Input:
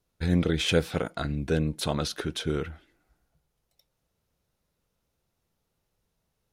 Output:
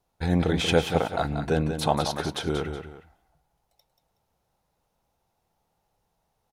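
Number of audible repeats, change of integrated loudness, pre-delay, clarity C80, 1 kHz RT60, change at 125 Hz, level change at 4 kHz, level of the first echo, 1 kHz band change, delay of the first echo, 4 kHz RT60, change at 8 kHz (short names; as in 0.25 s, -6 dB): 2, +2.0 dB, none, none, none, +1.0 dB, +1.0 dB, -8.0 dB, +9.5 dB, 0.184 s, none, +0.5 dB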